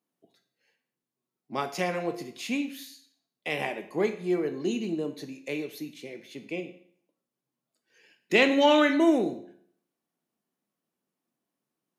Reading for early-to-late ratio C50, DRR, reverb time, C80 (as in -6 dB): 11.5 dB, 6.5 dB, 0.60 s, 14.5 dB